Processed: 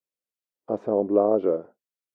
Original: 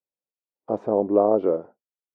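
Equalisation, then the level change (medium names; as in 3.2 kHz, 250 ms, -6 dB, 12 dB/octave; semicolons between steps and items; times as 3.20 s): bass shelf 160 Hz -4 dB; peaking EQ 860 Hz -5.5 dB 0.65 oct; 0.0 dB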